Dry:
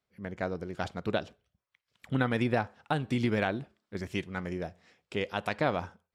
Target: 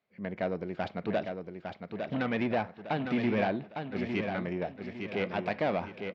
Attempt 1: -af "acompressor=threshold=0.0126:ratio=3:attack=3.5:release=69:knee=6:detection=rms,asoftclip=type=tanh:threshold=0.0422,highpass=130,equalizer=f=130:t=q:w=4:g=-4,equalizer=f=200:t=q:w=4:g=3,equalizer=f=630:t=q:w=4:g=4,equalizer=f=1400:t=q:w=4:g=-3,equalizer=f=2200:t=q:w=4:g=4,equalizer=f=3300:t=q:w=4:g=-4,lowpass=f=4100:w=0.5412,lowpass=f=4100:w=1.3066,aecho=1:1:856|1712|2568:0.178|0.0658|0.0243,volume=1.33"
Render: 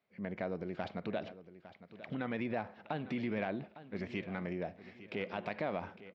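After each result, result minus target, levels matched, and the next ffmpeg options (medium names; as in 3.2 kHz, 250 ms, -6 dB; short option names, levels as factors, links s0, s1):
compression: peak gain reduction +13 dB; echo-to-direct -9 dB
-af "asoftclip=type=tanh:threshold=0.0422,highpass=130,equalizer=f=130:t=q:w=4:g=-4,equalizer=f=200:t=q:w=4:g=3,equalizer=f=630:t=q:w=4:g=4,equalizer=f=1400:t=q:w=4:g=-3,equalizer=f=2200:t=q:w=4:g=4,equalizer=f=3300:t=q:w=4:g=-4,lowpass=f=4100:w=0.5412,lowpass=f=4100:w=1.3066,aecho=1:1:856|1712|2568:0.178|0.0658|0.0243,volume=1.33"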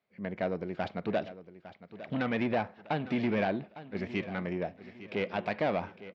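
echo-to-direct -9 dB
-af "asoftclip=type=tanh:threshold=0.0422,highpass=130,equalizer=f=130:t=q:w=4:g=-4,equalizer=f=200:t=q:w=4:g=3,equalizer=f=630:t=q:w=4:g=4,equalizer=f=1400:t=q:w=4:g=-3,equalizer=f=2200:t=q:w=4:g=4,equalizer=f=3300:t=q:w=4:g=-4,lowpass=f=4100:w=0.5412,lowpass=f=4100:w=1.3066,aecho=1:1:856|1712|2568|3424:0.501|0.185|0.0686|0.0254,volume=1.33"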